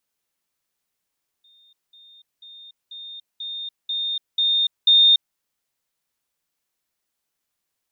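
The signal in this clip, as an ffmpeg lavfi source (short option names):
-f lavfi -i "aevalsrc='pow(10,(-52.5+6*floor(t/0.49))/20)*sin(2*PI*3650*t)*clip(min(mod(t,0.49),0.29-mod(t,0.49))/0.005,0,1)':d=3.92:s=44100"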